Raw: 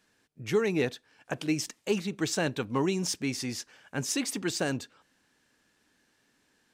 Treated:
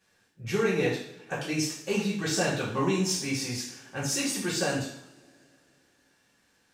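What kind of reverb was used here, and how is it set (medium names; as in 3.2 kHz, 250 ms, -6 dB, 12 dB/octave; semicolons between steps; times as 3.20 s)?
two-slope reverb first 0.6 s, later 3 s, from -27 dB, DRR -8.5 dB; trim -6 dB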